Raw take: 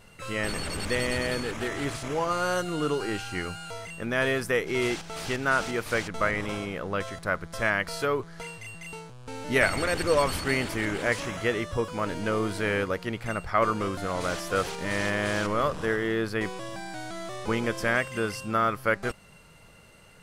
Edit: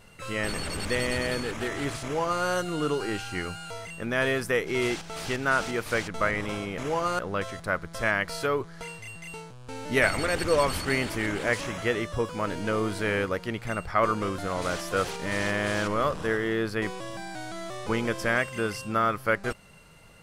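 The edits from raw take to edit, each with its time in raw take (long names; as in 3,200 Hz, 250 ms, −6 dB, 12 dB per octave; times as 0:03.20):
0:02.03–0:02.44: duplicate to 0:06.78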